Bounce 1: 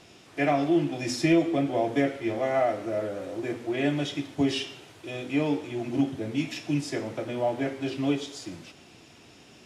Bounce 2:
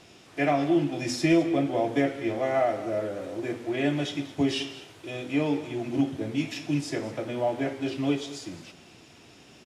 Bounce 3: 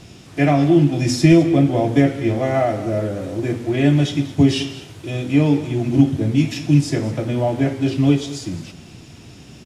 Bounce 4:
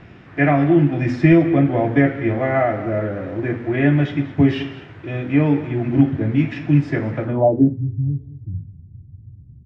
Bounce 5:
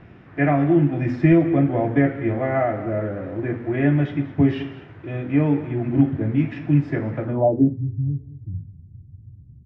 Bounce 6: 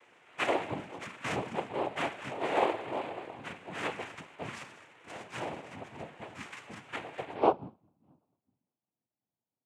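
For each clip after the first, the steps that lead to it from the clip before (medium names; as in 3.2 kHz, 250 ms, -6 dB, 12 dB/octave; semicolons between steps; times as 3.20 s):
delay 209 ms -16 dB
tone controls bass +14 dB, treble +4 dB; trim +5 dB
low-pass sweep 1.8 kHz -> 100 Hz, 7.23–7.88 s; trim -1 dB
treble shelf 3.2 kHz -11 dB; trim -2.5 dB
mistuned SSB -120 Hz 580–2700 Hz; noise-vocoded speech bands 4; trim -5 dB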